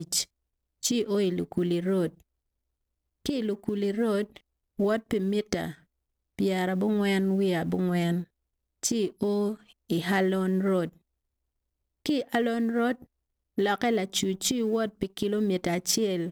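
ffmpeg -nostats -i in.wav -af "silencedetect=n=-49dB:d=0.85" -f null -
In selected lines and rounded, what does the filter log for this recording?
silence_start: 2.21
silence_end: 3.26 | silence_duration: 1.05
silence_start: 10.96
silence_end: 12.06 | silence_duration: 1.09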